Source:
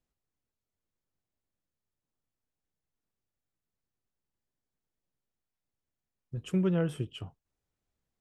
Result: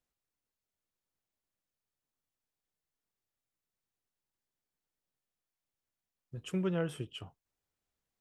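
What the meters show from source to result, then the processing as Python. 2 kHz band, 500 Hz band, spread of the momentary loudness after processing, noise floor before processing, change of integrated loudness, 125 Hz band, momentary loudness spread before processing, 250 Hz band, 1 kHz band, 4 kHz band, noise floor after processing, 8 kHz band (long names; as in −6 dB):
−0.5 dB, −3.5 dB, 16 LU, below −85 dBFS, −5.5 dB, −6.5 dB, 17 LU, −6.0 dB, −1.0 dB, 0.0 dB, below −85 dBFS, 0.0 dB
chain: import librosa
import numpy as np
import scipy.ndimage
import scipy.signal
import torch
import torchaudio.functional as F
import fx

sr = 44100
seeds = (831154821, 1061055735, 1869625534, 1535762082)

y = fx.low_shelf(x, sr, hz=380.0, db=-7.5)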